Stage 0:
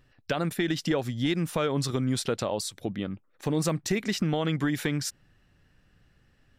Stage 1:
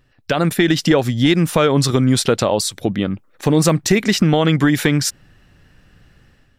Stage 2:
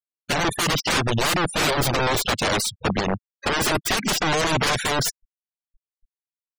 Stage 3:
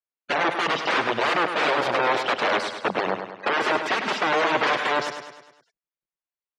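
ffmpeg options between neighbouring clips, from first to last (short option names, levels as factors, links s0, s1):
-af "dynaudnorm=f=120:g=5:m=2.82,volume=1.5"
-af "aeval=exprs='(mod(5.62*val(0)+1,2)-1)/5.62':c=same,afftfilt=real='re*gte(hypot(re,im),0.0708)':imag='im*gte(hypot(re,im),0.0708)':win_size=1024:overlap=0.75,aeval=exprs='0.251*(cos(1*acos(clip(val(0)/0.251,-1,1)))-cos(1*PI/2))+0.00562*(cos(4*acos(clip(val(0)/0.251,-1,1)))-cos(4*PI/2))':c=same"
-filter_complex "[0:a]highpass=390,lowpass=2500,asplit=2[s0][s1];[s1]aecho=0:1:102|204|306|408|510|612:0.398|0.207|0.108|0.056|0.0291|0.0151[s2];[s0][s2]amix=inputs=2:normalize=0,volume=1.19"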